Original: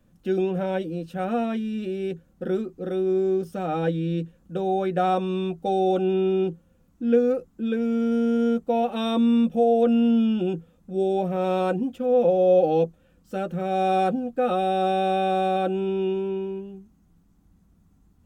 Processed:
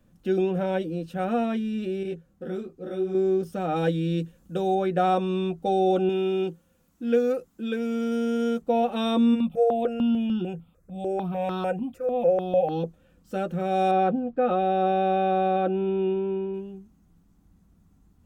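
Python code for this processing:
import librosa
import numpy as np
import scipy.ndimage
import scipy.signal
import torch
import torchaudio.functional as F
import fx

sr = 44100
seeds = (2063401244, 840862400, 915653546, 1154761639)

y = fx.detune_double(x, sr, cents=28, at=(2.03, 3.15))
y = fx.high_shelf(y, sr, hz=3900.0, db=9.0, at=(3.76, 4.75))
y = fx.tilt_eq(y, sr, slope=2.0, at=(6.09, 8.62))
y = fx.phaser_held(y, sr, hz=6.7, low_hz=870.0, high_hz=2200.0, at=(9.34, 12.83), fade=0.02)
y = fx.bessel_lowpass(y, sr, hz=2300.0, order=2, at=(13.91, 16.54))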